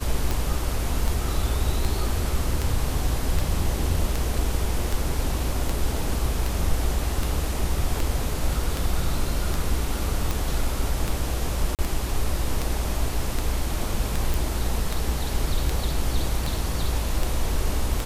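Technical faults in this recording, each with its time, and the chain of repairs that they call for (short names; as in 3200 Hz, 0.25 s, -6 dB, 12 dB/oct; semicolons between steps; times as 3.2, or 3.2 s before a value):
tick 78 rpm
11.75–11.79 gap 38 ms
14.34 pop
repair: de-click; interpolate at 11.75, 38 ms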